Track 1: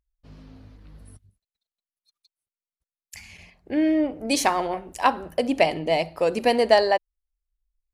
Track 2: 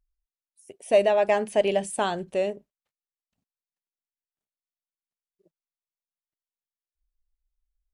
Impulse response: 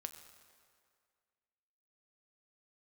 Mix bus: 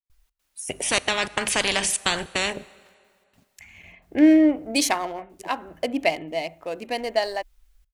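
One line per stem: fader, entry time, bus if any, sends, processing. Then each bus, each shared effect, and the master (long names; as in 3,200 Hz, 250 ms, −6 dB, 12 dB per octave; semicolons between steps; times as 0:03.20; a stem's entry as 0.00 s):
+2.0 dB, 0.45 s, no send, adaptive Wiener filter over 9 samples; high-shelf EQ 3,000 Hz +9 dB; hollow resonant body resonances 300/670/2,100 Hz, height 6 dB; automatic ducking −13 dB, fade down 1.15 s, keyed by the second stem
−1.0 dB, 0.00 s, send −3.5 dB, gate pattern ".xx.xxxxxx" 153 BPM −60 dB; every bin compressed towards the loudest bin 4 to 1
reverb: on, RT60 2.1 s, pre-delay 6 ms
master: parametric band 2,200 Hz +3 dB 2.2 octaves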